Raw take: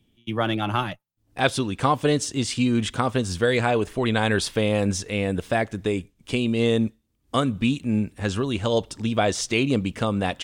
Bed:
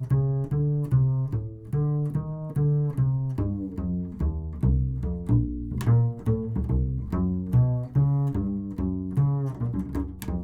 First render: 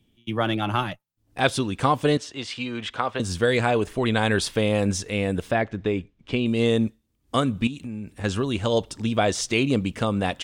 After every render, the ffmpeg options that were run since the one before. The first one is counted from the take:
-filter_complex "[0:a]asettb=1/sr,asplit=3[s0][s1][s2];[s0]atrim=end=2.174[s3];[s1]atrim=start=2.17:end=3.2,asetpts=PTS-STARTPTS,afade=t=in:d=0.004:c=qsin,afade=t=out:st=1.026:d=0.004:c=qsin,acrossover=split=460 4600:gain=0.224 1 0.141[s4][s5][s6];[s4][s5][s6]amix=inputs=3:normalize=0[s7];[s2]atrim=start=3.196[s8];[s3][s7]acrossfade=d=0.004:c1=hsin:c2=qsin[s9];[s9][s8]acrossfade=d=0.004:c1=qsin:c2=hsin,asettb=1/sr,asplit=3[s10][s11][s12];[s10]atrim=end=5.514[s13];[s11]atrim=start=5.51:end=6.46,asetpts=PTS-STARTPTS,afade=t=in:d=0.004:c=qsin,afade=t=out:st=0.946:d=0.004:c=qsin,lowpass=3500[s14];[s12]atrim=start=6.456[s15];[s13][s14]acrossfade=d=0.004:c1=hsin:c2=qsin[s16];[s16][s15]acrossfade=d=0.004:c1=qsin:c2=hsin,asettb=1/sr,asplit=3[s17][s18][s19];[s17]atrim=end=7.674[s20];[s18]atrim=start=7.67:end=8.24,asetpts=PTS-STARTPTS,afade=t=in:d=0.004:c=qsin,afade=t=out:st=0.566:d=0.004:c=qsin,acompressor=threshold=0.0316:ratio=5:attack=3.2:release=140:knee=1:detection=peak[s21];[s19]atrim=start=8.236[s22];[s20][s21]acrossfade=d=0.004:c1=hsin:c2=qsin[s23];[s23][s22]acrossfade=d=0.004:c1=qsin:c2=hsin"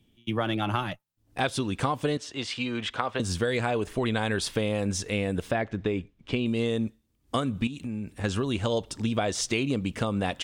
-af "acompressor=threshold=0.0708:ratio=6"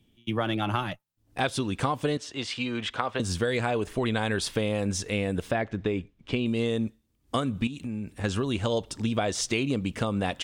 -af anull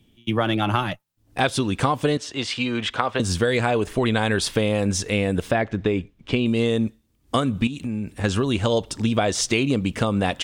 -af "volume=2"

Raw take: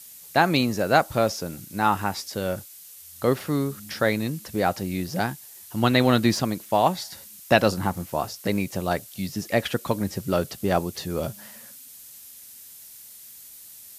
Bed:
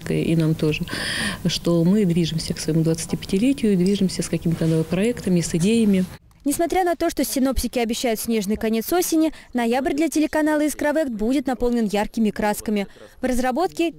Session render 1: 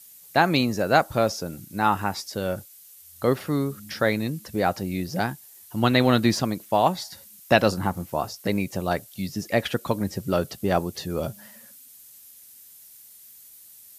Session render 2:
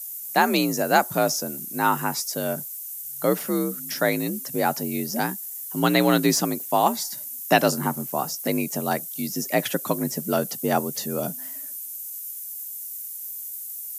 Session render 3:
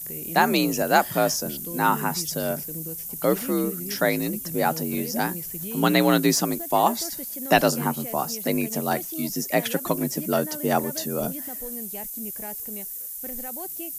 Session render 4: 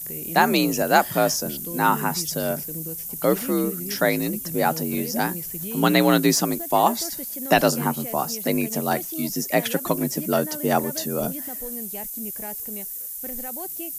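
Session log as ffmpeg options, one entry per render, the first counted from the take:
-af "afftdn=nr=6:nf=-46"
-af "aexciter=amount=2.3:drive=8.6:freq=5800,afreqshift=51"
-filter_complex "[1:a]volume=0.126[s0];[0:a][s0]amix=inputs=2:normalize=0"
-af "volume=1.19,alimiter=limit=0.708:level=0:latency=1"

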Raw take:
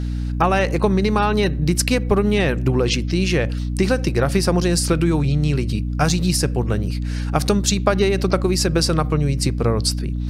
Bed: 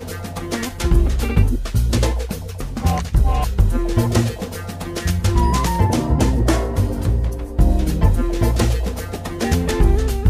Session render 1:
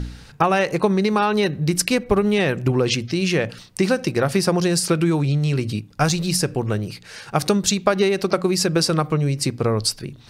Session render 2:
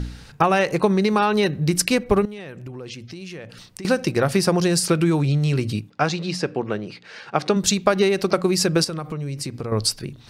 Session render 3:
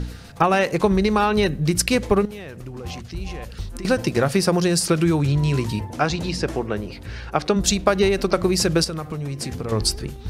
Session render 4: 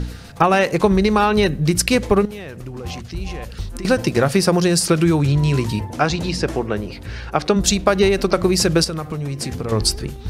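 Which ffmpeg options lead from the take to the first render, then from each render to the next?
-af "bandreject=f=60:t=h:w=4,bandreject=f=120:t=h:w=4,bandreject=f=180:t=h:w=4,bandreject=f=240:t=h:w=4,bandreject=f=300:t=h:w=4"
-filter_complex "[0:a]asettb=1/sr,asplit=3[s0][s1][s2];[s0]atrim=end=2.254[s3];[s1]atrim=start=2.25:end=3.85,asetpts=PTS-STARTPTS,afade=t=in:d=0.004:c=qsin,afade=t=out:st=1.596:d=0.004:c=qsin,acompressor=threshold=0.0126:ratio=3:attack=3.2:release=140:knee=1:detection=peak[s4];[s2]atrim=start=3.846[s5];[s3][s4]acrossfade=d=0.004:c1=hsin:c2=qsin[s6];[s6][s5]acrossfade=d=0.004:c1=qsin:c2=hsin,asplit=3[s7][s8][s9];[s7]afade=t=out:st=5.89:d=0.02[s10];[s8]highpass=210,lowpass=3800,afade=t=in:st=5.89:d=0.02,afade=t=out:st=7.55:d=0.02[s11];[s9]afade=t=in:st=7.55:d=0.02[s12];[s10][s11][s12]amix=inputs=3:normalize=0,asettb=1/sr,asplit=3[s13][s14][s15];[s13]atrim=end=8.844[s16];[s14]atrim=start=8.84:end=9.72,asetpts=PTS-STARTPTS,afade=t=in:d=0.004:c=qsin,afade=t=out:st=0.876:d=0.004:c=qsin,acompressor=threshold=0.0501:ratio=4:attack=3.2:release=140:knee=1:detection=peak[s17];[s15]atrim=start=9.716[s18];[s16][s17]acrossfade=d=0.004:c1=hsin:c2=qsin[s19];[s19][s18]acrossfade=d=0.004:c1=qsin:c2=hsin"
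-filter_complex "[1:a]volume=0.15[s0];[0:a][s0]amix=inputs=2:normalize=0"
-af "volume=1.41,alimiter=limit=0.794:level=0:latency=1"

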